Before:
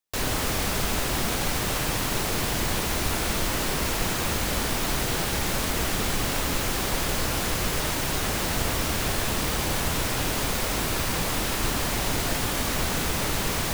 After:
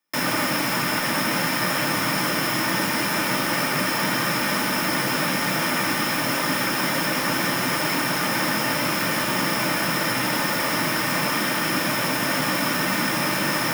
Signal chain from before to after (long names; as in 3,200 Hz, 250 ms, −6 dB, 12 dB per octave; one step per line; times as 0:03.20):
wave folding −26 dBFS
convolution reverb RT60 0.15 s, pre-delay 3 ms, DRR 4 dB
level +3 dB